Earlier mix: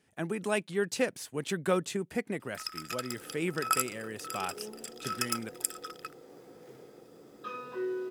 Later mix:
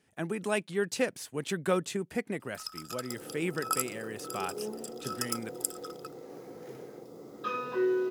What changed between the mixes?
first sound: add fixed phaser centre 860 Hz, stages 4; second sound +6.5 dB

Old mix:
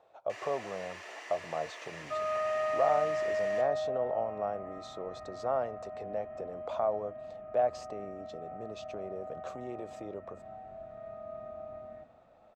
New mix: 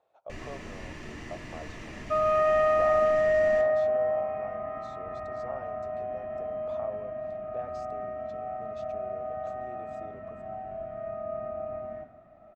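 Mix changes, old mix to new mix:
speech -9.0 dB; first sound: remove HPF 530 Hz 24 dB/oct; second sound +8.5 dB

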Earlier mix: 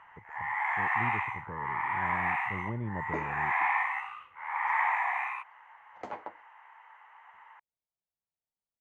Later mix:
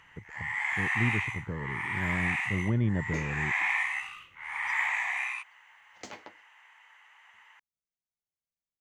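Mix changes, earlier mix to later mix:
speech +9.0 dB; master: remove EQ curve 260 Hz 0 dB, 930 Hz +10 dB, 5300 Hz -19 dB

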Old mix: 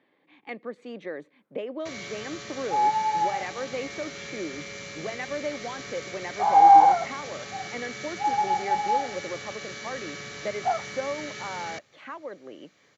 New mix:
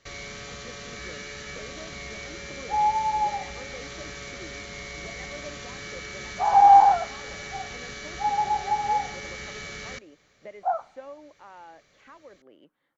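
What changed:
speech -11.0 dB; first sound: entry -1.80 s; master: remove HPF 100 Hz 24 dB/oct

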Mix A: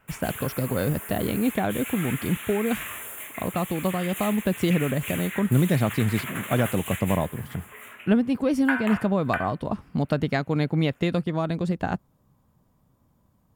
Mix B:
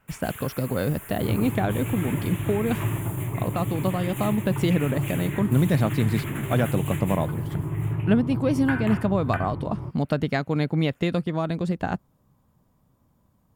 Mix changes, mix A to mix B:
first sound -4.0 dB; second sound: unmuted

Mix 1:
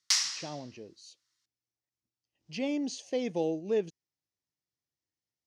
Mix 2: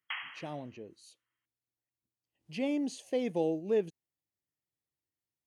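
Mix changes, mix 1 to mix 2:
background: add brick-wall FIR low-pass 3300 Hz; master: remove synth low-pass 5700 Hz, resonance Q 2.9

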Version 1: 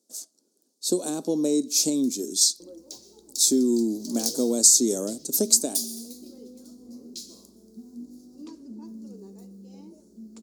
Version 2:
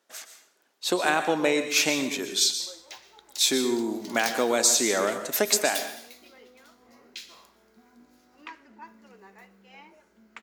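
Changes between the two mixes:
speech: send on; second sound: add low shelf 490 Hz -7 dB; master: remove EQ curve 120 Hz 0 dB, 240 Hz +11 dB, 490 Hz +1 dB, 790 Hz -12 dB, 1200 Hz -17 dB, 1900 Hz -28 dB, 2900 Hz -18 dB, 4500 Hz +4 dB, 9100 Hz +11 dB, 14000 Hz +4 dB

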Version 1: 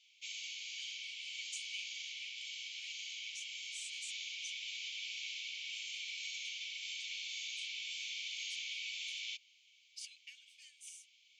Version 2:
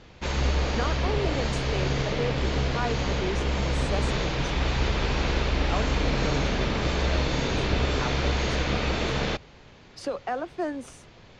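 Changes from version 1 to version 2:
background +4.5 dB; master: remove rippled Chebyshev high-pass 2200 Hz, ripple 6 dB

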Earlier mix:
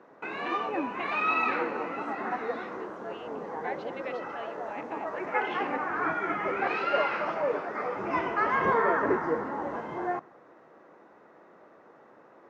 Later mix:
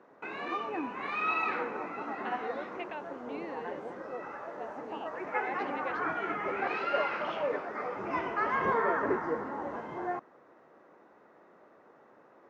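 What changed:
speech: entry +1.80 s; reverb: off

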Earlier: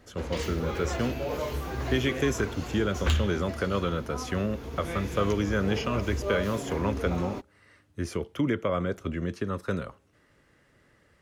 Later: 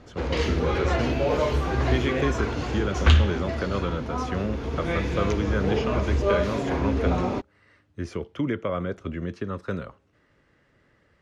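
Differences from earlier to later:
background +8.5 dB; master: add air absorption 87 m

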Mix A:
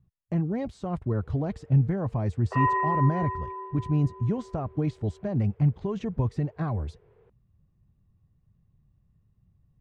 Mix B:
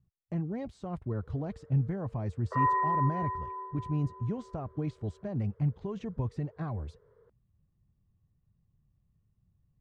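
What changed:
speech -6.5 dB; background: add fixed phaser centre 510 Hz, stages 8

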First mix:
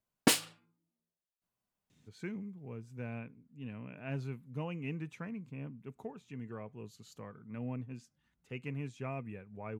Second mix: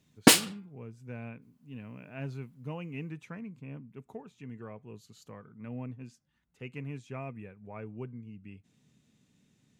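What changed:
speech: entry -1.90 s; background +8.0 dB

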